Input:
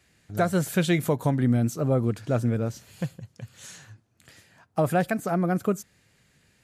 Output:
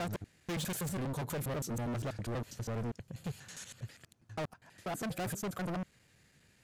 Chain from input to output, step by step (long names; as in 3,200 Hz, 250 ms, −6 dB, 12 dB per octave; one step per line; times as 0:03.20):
slices reordered back to front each 81 ms, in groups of 6
gain into a clipping stage and back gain 31.5 dB
level −3 dB